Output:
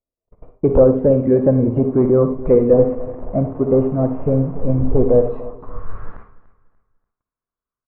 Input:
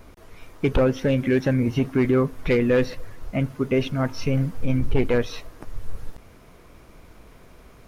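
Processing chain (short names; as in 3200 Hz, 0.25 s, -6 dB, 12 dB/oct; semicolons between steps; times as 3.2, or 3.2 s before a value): 2.73–5.29 delta modulation 16 kbps, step -33 dBFS; gate -38 dBFS, range -50 dB; bell 1100 Hz +7.5 dB 0.39 oct; low-pass sweep 600 Hz -> 1500 Hz, 5.25–5.92; air absorption 220 m; feedback echo 0.292 s, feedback 31%, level -18 dB; reverb RT60 0.30 s, pre-delay 50 ms, DRR 7.5 dB; gain +3.5 dB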